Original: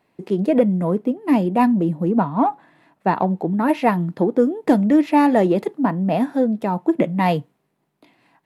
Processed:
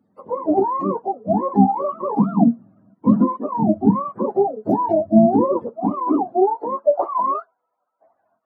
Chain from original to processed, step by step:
frequency axis turned over on the octave scale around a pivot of 440 Hz
high-pass filter sweep 200 Hz → 750 Hz, 0:05.56–0:07.15
level −1 dB

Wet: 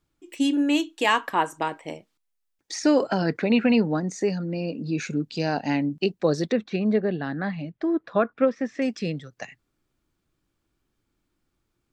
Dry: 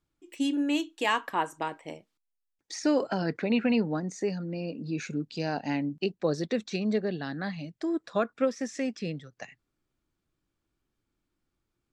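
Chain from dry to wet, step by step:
0:06.52–0:08.82: low-pass filter 2,400 Hz 12 dB per octave
level +5.5 dB

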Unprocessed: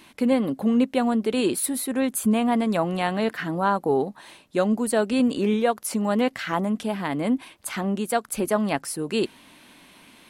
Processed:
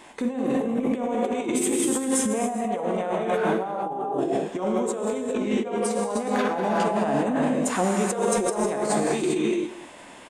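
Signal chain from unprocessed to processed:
octave-band graphic EQ 250/500/1,000/8,000 Hz −3/+8/+9/+4 dB
reverb whose tail is shaped and stops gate 450 ms flat, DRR −0.5 dB
compressor whose output falls as the input rises −20 dBFS, ratio −1
formants moved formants −3 semitones
on a send: single-tap delay 202 ms −17 dB
on the sum: level −5 dB

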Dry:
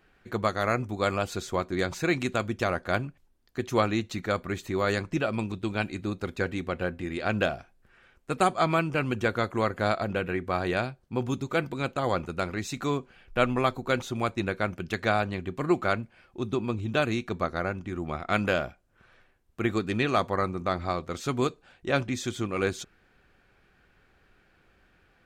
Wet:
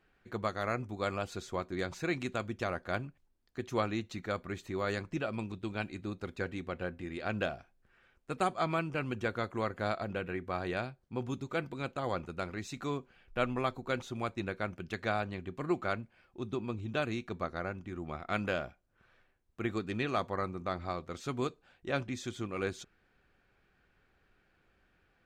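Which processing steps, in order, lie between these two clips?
high-shelf EQ 11,000 Hz −8.5 dB
level −7.5 dB

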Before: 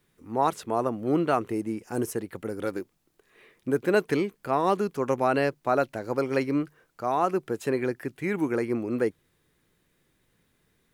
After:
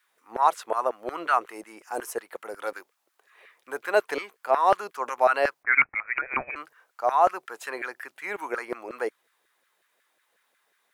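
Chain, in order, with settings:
auto-filter high-pass saw down 5.5 Hz 540–1,600 Hz
0:05.63–0:06.56: voice inversion scrambler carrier 2,800 Hz

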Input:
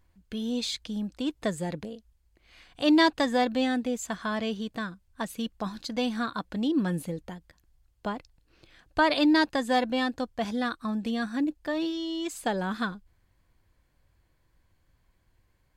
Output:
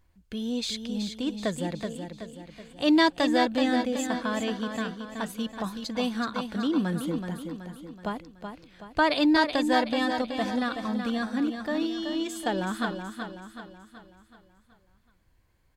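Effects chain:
repeating echo 376 ms, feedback 48%, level −7 dB

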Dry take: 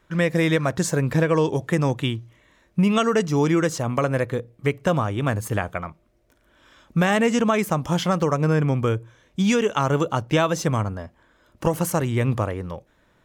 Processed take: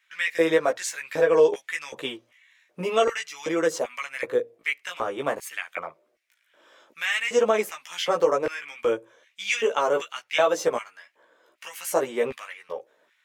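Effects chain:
auto-filter high-pass square 1.3 Hz 480–2,200 Hz
multi-voice chorus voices 2, 0.53 Hz, delay 15 ms, depth 2.8 ms

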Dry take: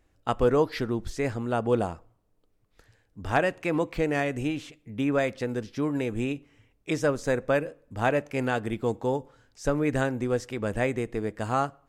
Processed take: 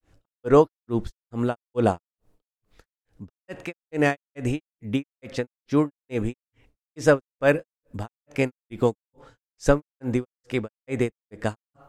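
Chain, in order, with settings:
granular cloud 257 ms, grains 2.3 per second, pitch spread up and down by 0 semitones
level +8.5 dB

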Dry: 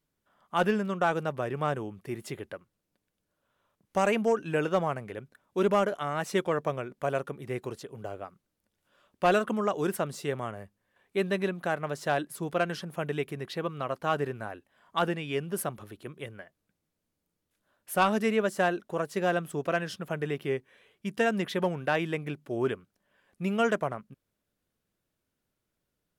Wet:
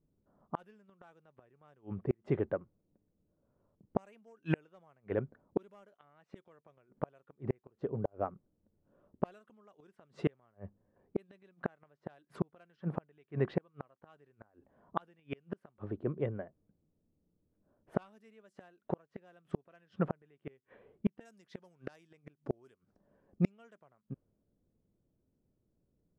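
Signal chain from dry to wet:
low-pass that shuts in the quiet parts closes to 410 Hz, open at −22 dBFS
0:21.25–0:23.52: flat-topped bell 7,300 Hz +15 dB
gate with flip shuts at −25 dBFS, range −41 dB
level +7.5 dB

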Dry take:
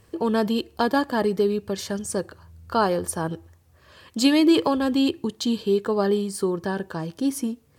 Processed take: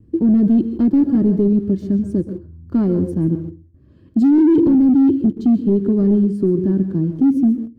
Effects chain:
noise gate with hold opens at −49 dBFS
low shelf with overshoot 370 Hz +7.5 dB, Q 3
on a send at −10 dB: convolution reverb RT60 0.30 s, pre-delay 118 ms
on the sum: hard clipping −13 dBFS, distortion −6 dB
in parallel at −11 dB: bit reduction 5 bits
on the sum: drawn EQ curve 450 Hz 0 dB, 840 Hz −17 dB, 9,100 Hz −27 dB
level +1 dB

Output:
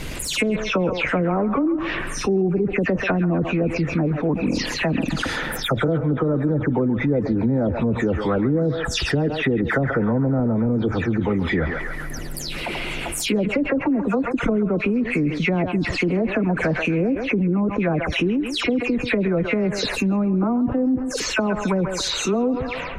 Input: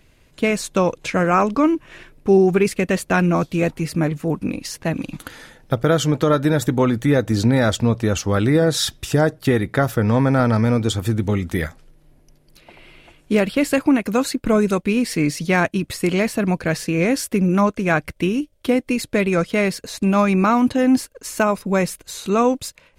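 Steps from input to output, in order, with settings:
every frequency bin delayed by itself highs early, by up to 184 ms
treble cut that deepens with the level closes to 480 Hz, closed at −14 dBFS
harmonic and percussive parts rebalanced harmonic −4 dB
on a send: feedback echo with a band-pass in the loop 137 ms, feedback 50%, band-pass 1,400 Hz, level −12 dB
on the sum: envelope flattener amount 70%
level −2.5 dB

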